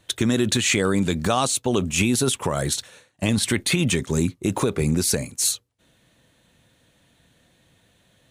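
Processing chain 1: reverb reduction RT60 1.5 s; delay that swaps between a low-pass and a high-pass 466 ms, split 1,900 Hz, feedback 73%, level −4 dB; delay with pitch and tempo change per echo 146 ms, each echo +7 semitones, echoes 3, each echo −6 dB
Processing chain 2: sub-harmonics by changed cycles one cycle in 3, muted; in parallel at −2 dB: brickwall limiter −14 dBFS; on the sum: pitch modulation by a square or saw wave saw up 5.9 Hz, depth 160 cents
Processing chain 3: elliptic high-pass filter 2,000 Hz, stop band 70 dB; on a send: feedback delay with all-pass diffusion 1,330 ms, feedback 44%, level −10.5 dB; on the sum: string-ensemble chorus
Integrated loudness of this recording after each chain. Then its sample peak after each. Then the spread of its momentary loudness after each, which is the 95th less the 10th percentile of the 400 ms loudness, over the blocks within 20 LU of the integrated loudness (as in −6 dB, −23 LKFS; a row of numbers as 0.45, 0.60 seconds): −21.5, −20.0, −29.5 LKFS; −4.0, −4.0, −12.0 dBFS; 15, 5, 19 LU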